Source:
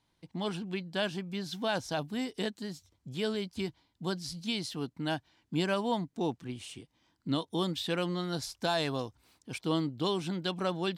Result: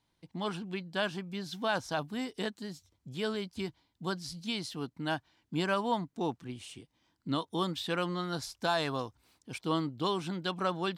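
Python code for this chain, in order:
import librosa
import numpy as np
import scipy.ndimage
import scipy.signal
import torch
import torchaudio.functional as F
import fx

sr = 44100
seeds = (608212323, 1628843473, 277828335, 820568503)

y = fx.dynamic_eq(x, sr, hz=1200.0, q=1.4, threshold_db=-48.0, ratio=4.0, max_db=7)
y = F.gain(torch.from_numpy(y), -2.0).numpy()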